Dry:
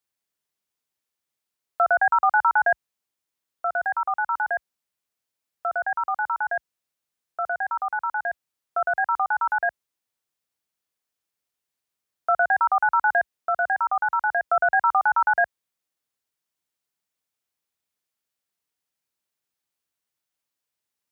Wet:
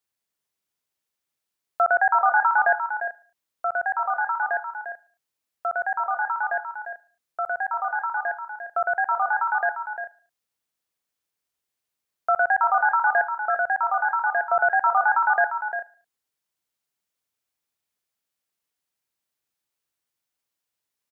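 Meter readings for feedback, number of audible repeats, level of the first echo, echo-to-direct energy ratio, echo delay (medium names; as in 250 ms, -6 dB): no regular repeats, 5, -16.5 dB, -7.5 dB, 74 ms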